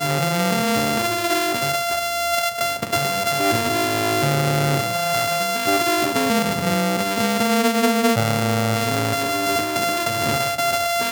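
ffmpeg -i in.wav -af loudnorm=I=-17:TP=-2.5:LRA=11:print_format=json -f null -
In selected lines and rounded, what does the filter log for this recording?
"input_i" : "-19.9",
"input_tp" : "-5.0",
"input_lra" : "1.1",
"input_thresh" : "-29.9",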